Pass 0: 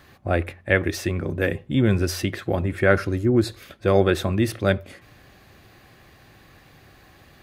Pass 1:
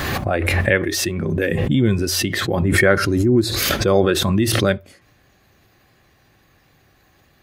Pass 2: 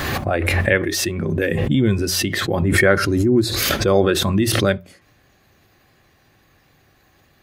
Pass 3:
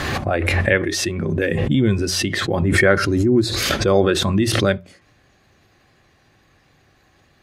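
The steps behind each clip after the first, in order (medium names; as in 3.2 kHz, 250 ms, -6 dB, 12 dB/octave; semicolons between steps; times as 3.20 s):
spectral noise reduction 8 dB; swell ahead of each attack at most 20 dB/s; trim +2 dB
hum notches 60/120/180 Hz
low-pass 9 kHz 12 dB/octave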